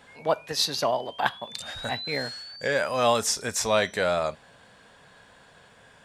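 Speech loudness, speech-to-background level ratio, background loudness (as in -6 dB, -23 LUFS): -26.5 LUFS, 13.0 dB, -39.5 LUFS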